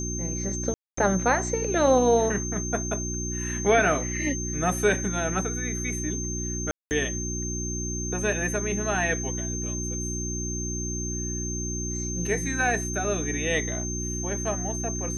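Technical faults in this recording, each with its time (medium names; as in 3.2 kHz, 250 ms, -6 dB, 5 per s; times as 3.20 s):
hum 60 Hz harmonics 6 -32 dBFS
whine 6.3 kHz -32 dBFS
0.74–0.97 s: dropout 234 ms
6.71–6.91 s: dropout 199 ms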